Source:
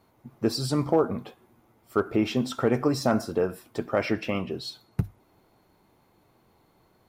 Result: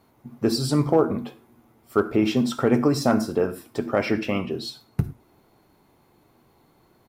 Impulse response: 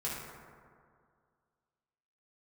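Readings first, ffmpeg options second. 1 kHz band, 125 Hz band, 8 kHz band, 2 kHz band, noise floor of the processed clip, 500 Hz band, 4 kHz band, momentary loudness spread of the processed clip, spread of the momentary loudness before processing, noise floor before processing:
+2.5 dB, +3.5 dB, +3.5 dB, +3.0 dB, −61 dBFS, +3.0 dB, +3.0 dB, 11 LU, 10 LU, −64 dBFS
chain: -filter_complex "[0:a]asplit=2[link_01][link_02];[link_02]firequalizer=gain_entry='entry(180,0);entry(270,13);entry(470,-1);entry(10000,8)':delay=0.05:min_phase=1[link_03];[1:a]atrim=start_sample=2205,afade=type=out:start_time=0.16:duration=0.01,atrim=end_sample=7497[link_04];[link_03][link_04]afir=irnorm=-1:irlink=0,volume=-13.5dB[link_05];[link_01][link_05]amix=inputs=2:normalize=0,volume=1.5dB"

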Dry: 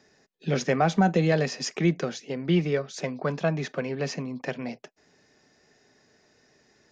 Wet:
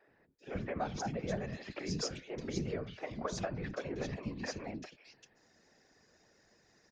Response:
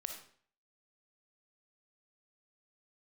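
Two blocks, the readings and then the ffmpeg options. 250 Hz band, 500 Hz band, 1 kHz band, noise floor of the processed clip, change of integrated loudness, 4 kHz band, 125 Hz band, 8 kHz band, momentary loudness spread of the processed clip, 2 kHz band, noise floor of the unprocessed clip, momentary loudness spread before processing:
−13.5 dB, −12.5 dB, −12.5 dB, −70 dBFS, −12.5 dB, −9.0 dB, −13.5 dB, can't be measured, 8 LU, −12.5 dB, −64 dBFS, 12 LU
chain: -filter_complex "[0:a]bandreject=frequency=292.9:width_type=h:width=4,bandreject=frequency=585.8:width_type=h:width=4,bandreject=frequency=878.7:width_type=h:width=4,bandreject=frequency=1171.6:width_type=h:width=4,bandreject=frequency=1464.5:width_type=h:width=4,bandreject=frequency=1757.4:width_type=h:width=4,bandreject=frequency=2050.3:width_type=h:width=4,bandreject=frequency=2343.2:width_type=h:width=4,bandreject=frequency=2636.1:width_type=h:width=4,bandreject=frequency=2929:width_type=h:width=4,bandreject=frequency=3221.9:width_type=h:width=4,bandreject=frequency=3514.8:width_type=h:width=4,bandreject=frequency=3807.7:width_type=h:width=4,bandreject=frequency=4100.6:width_type=h:width=4,bandreject=frequency=4393.5:width_type=h:width=4,bandreject=frequency=4686.4:width_type=h:width=4,acompressor=threshold=-29dB:ratio=6,acrossover=split=320|2800[link_01][link_02][link_03];[link_01]adelay=80[link_04];[link_03]adelay=390[link_05];[link_04][link_02][link_05]amix=inputs=3:normalize=0,afftfilt=real='hypot(re,im)*cos(2*PI*random(0))':imag='hypot(re,im)*sin(2*PI*random(1))':win_size=512:overlap=0.75,volume=2dB"

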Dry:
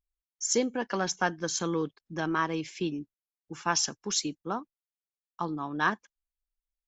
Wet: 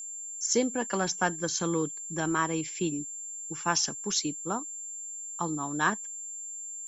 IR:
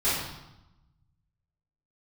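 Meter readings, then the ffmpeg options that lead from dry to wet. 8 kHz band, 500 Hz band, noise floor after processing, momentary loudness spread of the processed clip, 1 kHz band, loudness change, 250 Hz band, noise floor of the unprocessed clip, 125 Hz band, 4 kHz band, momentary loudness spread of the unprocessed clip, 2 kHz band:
+4.0 dB, +0.5 dB, −40 dBFS, 10 LU, 0.0 dB, +0.5 dB, +1.0 dB, below −85 dBFS, +2.0 dB, 0.0 dB, 9 LU, 0.0 dB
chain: -af "aeval=exprs='val(0)+0.0141*sin(2*PI*7300*n/s)':channel_layout=same,lowshelf=frequency=180:gain=3.5"

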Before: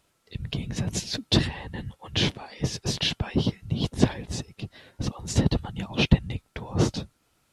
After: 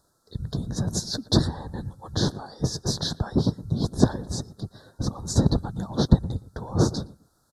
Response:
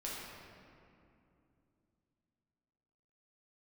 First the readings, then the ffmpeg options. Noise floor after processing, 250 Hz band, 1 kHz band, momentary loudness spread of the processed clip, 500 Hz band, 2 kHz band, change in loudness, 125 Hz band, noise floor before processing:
−67 dBFS, +2.0 dB, +2.0 dB, 13 LU, +2.0 dB, −9.0 dB, +1.0 dB, +2.0 dB, −69 dBFS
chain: -filter_complex "[0:a]asuperstop=centerf=2500:order=8:qfactor=1.1,asplit=2[link_01][link_02];[link_02]adelay=117,lowpass=frequency=1200:poles=1,volume=-17dB,asplit=2[link_03][link_04];[link_04]adelay=117,lowpass=frequency=1200:poles=1,volume=0.26[link_05];[link_01][link_03][link_05]amix=inputs=3:normalize=0,volume=2dB"

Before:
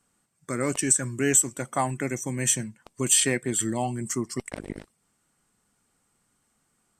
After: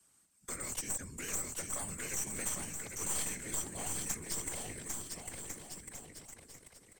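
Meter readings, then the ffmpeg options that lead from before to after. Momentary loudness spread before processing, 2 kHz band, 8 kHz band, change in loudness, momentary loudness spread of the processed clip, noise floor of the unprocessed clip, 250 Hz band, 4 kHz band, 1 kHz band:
16 LU, −11.5 dB, −11.0 dB, −13.0 dB, 14 LU, −72 dBFS, −18.0 dB, −12.0 dB, −15.0 dB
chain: -filter_complex "[0:a]highshelf=frequency=2700:gain=11.5,acrossover=split=150|3100[link_01][link_02][link_03];[link_02]acompressor=threshold=-33dB:ratio=6[link_04];[link_01][link_04][link_03]amix=inputs=3:normalize=0,alimiter=limit=-7dB:level=0:latency=1:release=16,acrossover=split=110|400|7300[link_05][link_06][link_07][link_08];[link_05]acompressor=threshold=-48dB:ratio=4[link_09];[link_06]acompressor=threshold=-47dB:ratio=4[link_10];[link_07]acompressor=threshold=-33dB:ratio=4[link_11];[link_08]acompressor=threshold=-32dB:ratio=4[link_12];[link_09][link_10][link_11][link_12]amix=inputs=4:normalize=0,afftfilt=real='hypot(re,im)*cos(2*PI*random(0))':imag='hypot(re,im)*sin(2*PI*random(1))':win_size=512:overlap=0.75,aeval=exprs='clip(val(0),-1,0.0075)':channel_layout=same,asplit=2[link_13][link_14];[link_14]aecho=0:1:800|1400|1850|2188|2441:0.631|0.398|0.251|0.158|0.1[link_15];[link_13][link_15]amix=inputs=2:normalize=0"

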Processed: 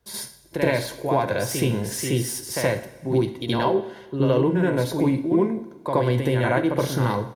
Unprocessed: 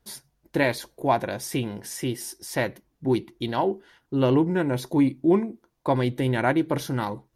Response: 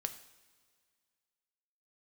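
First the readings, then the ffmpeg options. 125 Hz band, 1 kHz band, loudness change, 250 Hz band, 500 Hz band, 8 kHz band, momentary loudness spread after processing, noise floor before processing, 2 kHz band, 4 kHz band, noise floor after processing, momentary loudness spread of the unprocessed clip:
+4.5 dB, +1.0 dB, +2.5 dB, +0.5 dB, +3.5 dB, +6.0 dB, 6 LU, −71 dBFS, +1.5 dB, +4.0 dB, −47 dBFS, 10 LU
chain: -filter_complex "[0:a]highpass=55,aecho=1:1:1.9:0.33,acrossover=split=180|3500[link_01][link_02][link_03];[link_03]volume=33.5dB,asoftclip=hard,volume=-33.5dB[link_04];[link_01][link_02][link_04]amix=inputs=3:normalize=0,acompressor=threshold=-27dB:ratio=3,asplit=2[link_05][link_06];[1:a]atrim=start_sample=2205,lowshelf=frequency=410:gain=3.5,adelay=73[link_07];[link_06][link_07]afir=irnorm=-1:irlink=0,volume=5.5dB[link_08];[link_05][link_08]amix=inputs=2:normalize=0,volume=1dB"

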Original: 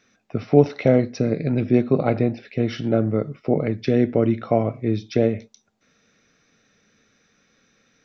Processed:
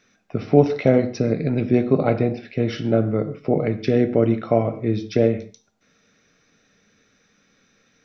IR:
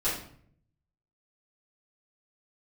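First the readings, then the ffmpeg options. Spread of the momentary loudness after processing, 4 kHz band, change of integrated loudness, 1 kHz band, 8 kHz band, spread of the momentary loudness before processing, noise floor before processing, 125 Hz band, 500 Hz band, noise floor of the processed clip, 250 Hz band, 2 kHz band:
7 LU, +1.0 dB, +0.5 dB, +1.0 dB, can't be measured, 8 LU, −66 dBFS, +0.5 dB, +1.0 dB, −63 dBFS, 0.0 dB, +1.0 dB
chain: -filter_complex "[0:a]asplit=2[link_01][link_02];[1:a]atrim=start_sample=2205,atrim=end_sample=4410,asetrate=26460,aresample=44100[link_03];[link_02][link_03]afir=irnorm=-1:irlink=0,volume=-21.5dB[link_04];[link_01][link_04]amix=inputs=2:normalize=0"

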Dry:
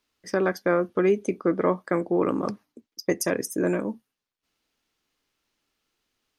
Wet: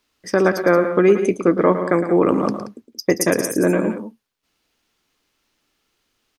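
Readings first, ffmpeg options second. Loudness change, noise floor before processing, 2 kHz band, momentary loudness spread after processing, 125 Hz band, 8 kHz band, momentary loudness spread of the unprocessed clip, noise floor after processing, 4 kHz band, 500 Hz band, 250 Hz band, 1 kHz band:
+7.5 dB, below −85 dBFS, +7.5 dB, 10 LU, +8.0 dB, +7.5 dB, 10 LU, −71 dBFS, +7.5 dB, +7.5 dB, +7.5 dB, +7.5 dB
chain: -af "aecho=1:1:110.8|177.8:0.316|0.251,volume=7dB"

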